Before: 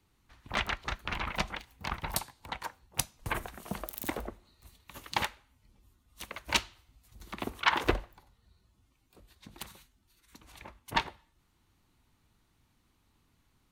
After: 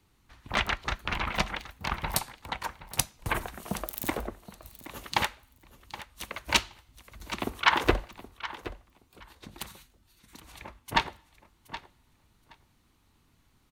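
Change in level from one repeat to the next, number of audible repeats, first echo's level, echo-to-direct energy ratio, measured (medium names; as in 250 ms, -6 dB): -16.0 dB, 2, -15.0 dB, -15.0 dB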